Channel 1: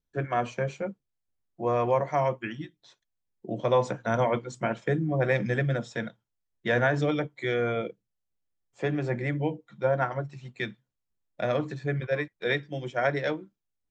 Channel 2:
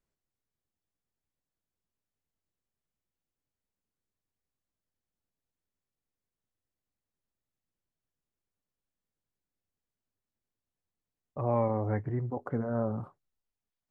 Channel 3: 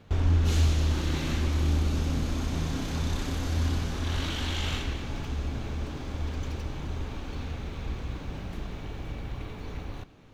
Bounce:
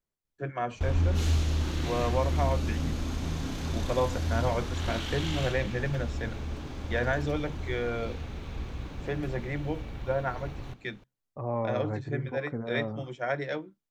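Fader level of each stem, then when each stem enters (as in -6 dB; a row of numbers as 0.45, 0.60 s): -4.5, -3.0, -2.5 dB; 0.25, 0.00, 0.70 s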